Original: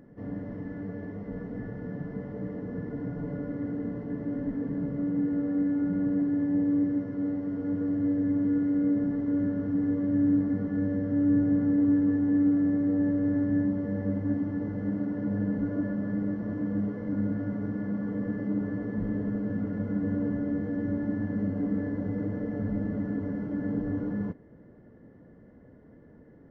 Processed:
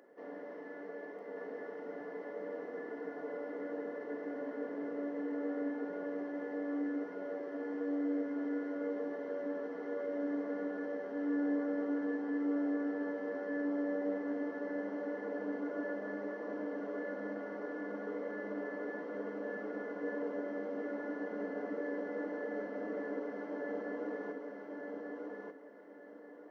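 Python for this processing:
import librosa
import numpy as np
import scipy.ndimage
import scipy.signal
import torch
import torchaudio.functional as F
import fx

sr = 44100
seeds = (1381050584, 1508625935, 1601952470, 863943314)

p1 = scipy.signal.sosfilt(scipy.signal.butter(4, 410.0, 'highpass', fs=sr, output='sos'), x)
y = p1 + fx.echo_feedback(p1, sr, ms=1189, feedback_pct=30, wet_db=-3.0, dry=0)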